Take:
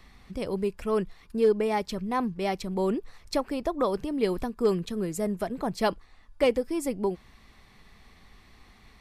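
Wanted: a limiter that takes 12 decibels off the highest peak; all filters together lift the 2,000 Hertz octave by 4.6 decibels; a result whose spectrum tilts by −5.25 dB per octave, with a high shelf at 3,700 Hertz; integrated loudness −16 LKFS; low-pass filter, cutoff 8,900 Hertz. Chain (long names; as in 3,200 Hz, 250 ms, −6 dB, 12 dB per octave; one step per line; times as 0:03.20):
low-pass filter 8,900 Hz
parametric band 2,000 Hz +6.5 dB
high-shelf EQ 3,700 Hz −3.5 dB
level +17.5 dB
brickwall limiter −6 dBFS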